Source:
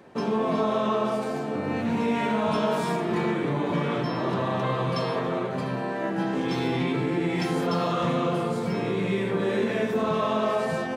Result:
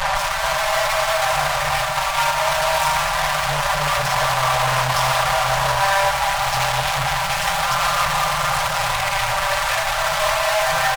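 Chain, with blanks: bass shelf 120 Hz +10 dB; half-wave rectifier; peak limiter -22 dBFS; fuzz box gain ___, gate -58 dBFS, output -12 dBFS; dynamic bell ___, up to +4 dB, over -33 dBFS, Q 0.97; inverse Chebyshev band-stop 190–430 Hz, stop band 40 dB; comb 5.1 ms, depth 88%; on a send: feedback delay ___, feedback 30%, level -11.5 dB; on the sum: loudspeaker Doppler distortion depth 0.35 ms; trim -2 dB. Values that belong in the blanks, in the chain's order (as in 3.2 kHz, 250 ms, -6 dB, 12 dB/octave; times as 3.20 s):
58 dB, 930 Hz, 721 ms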